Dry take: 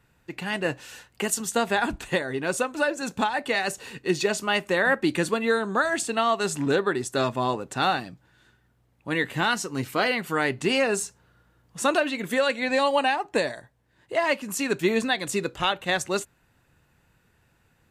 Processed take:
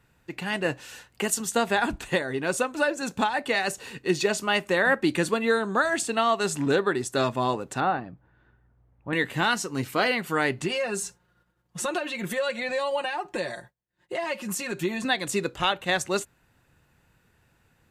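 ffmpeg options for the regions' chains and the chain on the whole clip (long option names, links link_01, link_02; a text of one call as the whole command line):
ffmpeg -i in.wav -filter_complex "[0:a]asettb=1/sr,asplit=3[link_01][link_02][link_03];[link_01]atrim=end=7.804[link_04];[link_02]atrim=start=7.8:end=9.13,asetpts=PTS-STARTPTS,afade=type=in:duration=0.004:curve=qsin,afade=type=out:start_time=1.326:duration=0.004:curve=qsin,lowpass=1400,asubboost=boost=6:cutoff=110[link_05];[link_03]atrim=start=9.126[link_06];[link_04][link_05]acrossfade=duration=0.004:curve1=hsin:curve2=qsin[link_07];[link_07][link_06]acrossfade=duration=0.004:curve1=qsin:curve2=hsin,asettb=1/sr,asplit=3[link_08][link_09][link_10];[link_08]atrim=end=10.624[link_11];[link_09]atrim=start=10.62:end=15.05,asetpts=PTS-STARTPTS,afade=type=in:duration=0.004:curve=qsin,afade=type=out:start_time=4.426:duration=0.004:curve=qsin,agate=range=-33dB:threshold=-55dB:ratio=3:release=100:detection=peak,acompressor=threshold=-29dB:ratio=3:attack=3.2:release=140:knee=1:detection=peak,aecho=1:1:5.6:0.78,atrim=end_sample=195363[link_12];[link_10]atrim=start=15.046[link_13];[link_11][link_12]acrossfade=duration=0.004:curve1=hsin:curve2=qsin[link_14];[link_14][link_13]acrossfade=duration=0.004:curve1=qsin:curve2=hsin" out.wav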